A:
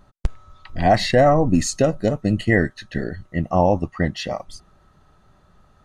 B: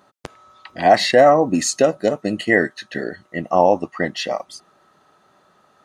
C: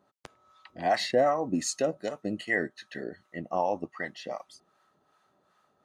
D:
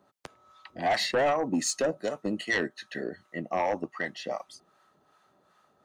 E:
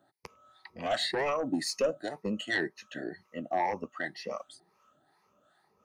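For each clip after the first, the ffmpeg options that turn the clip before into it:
ffmpeg -i in.wav -af "highpass=310,volume=4dB" out.wav
ffmpeg -i in.wav -filter_complex "[0:a]acrossover=split=740[link_01][link_02];[link_01]aeval=exprs='val(0)*(1-0.7/2+0.7/2*cos(2*PI*2.6*n/s))':channel_layout=same[link_03];[link_02]aeval=exprs='val(0)*(1-0.7/2-0.7/2*cos(2*PI*2.6*n/s))':channel_layout=same[link_04];[link_03][link_04]amix=inputs=2:normalize=0,volume=-9dB" out.wav
ffmpeg -i in.wav -filter_complex "[0:a]acrossover=split=140|4100[link_01][link_02][link_03];[link_01]acompressor=threshold=-58dB:ratio=6[link_04];[link_04][link_02][link_03]amix=inputs=3:normalize=0,aeval=exprs='0.224*sin(PI/2*2.24*val(0)/0.224)':channel_layout=same,volume=-7.5dB" out.wav
ffmpeg -i in.wav -af "afftfilt=real='re*pow(10,14/40*sin(2*PI*(0.83*log(max(b,1)*sr/1024/100)/log(2)-(2)*(pts-256)/sr)))':imag='im*pow(10,14/40*sin(2*PI*(0.83*log(max(b,1)*sr/1024/100)/log(2)-(2)*(pts-256)/sr)))':win_size=1024:overlap=0.75,volume=-5dB" out.wav

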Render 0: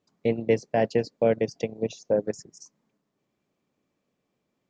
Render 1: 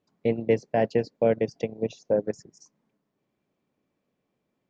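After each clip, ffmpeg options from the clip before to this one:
ffmpeg -i in.wav -af "highshelf=frequency=5800:gain=-12,bandreject=frequency=1200:width=25" out.wav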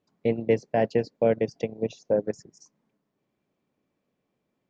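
ffmpeg -i in.wav -af anull out.wav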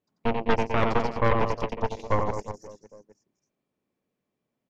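ffmpeg -i in.wav -af "aecho=1:1:90|207|359.1|556.8|813.9:0.631|0.398|0.251|0.158|0.1,aeval=exprs='0.422*(cos(1*acos(clip(val(0)/0.422,-1,1)))-cos(1*PI/2))+0.211*(cos(6*acos(clip(val(0)/0.422,-1,1)))-cos(6*PI/2))':channel_layout=same,volume=-6.5dB" out.wav

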